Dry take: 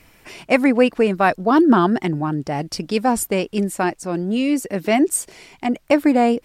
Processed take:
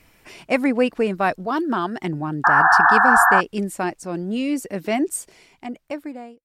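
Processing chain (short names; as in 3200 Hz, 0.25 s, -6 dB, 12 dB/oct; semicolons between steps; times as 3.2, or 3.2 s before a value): ending faded out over 1.68 s; 1.46–2.01 low shelf 490 Hz -9 dB; 2.44–3.41 painted sound noise 690–1800 Hz -10 dBFS; gain -4 dB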